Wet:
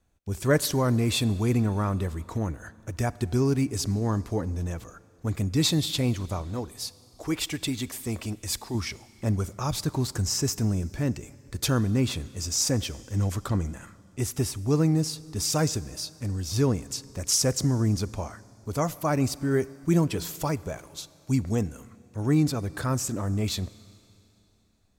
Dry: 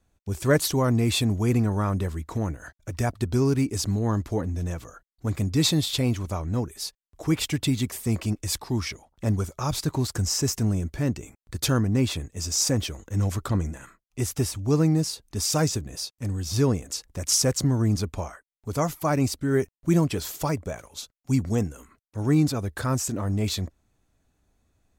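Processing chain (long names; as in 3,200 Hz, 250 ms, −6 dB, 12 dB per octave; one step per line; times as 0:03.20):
0:06.42–0:08.75: parametric band 150 Hz −8.5 dB 1.3 octaves
four-comb reverb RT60 2.8 s, combs from 32 ms, DRR 19 dB
level −1.5 dB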